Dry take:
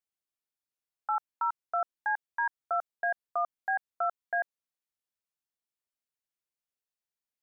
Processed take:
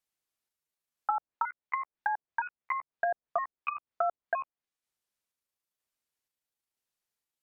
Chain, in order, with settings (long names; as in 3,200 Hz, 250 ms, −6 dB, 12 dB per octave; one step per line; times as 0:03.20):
pitch shifter gated in a rhythm +7.5 semitones, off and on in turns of 483 ms
treble cut that deepens with the level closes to 750 Hz, closed at −30 dBFS
level +5 dB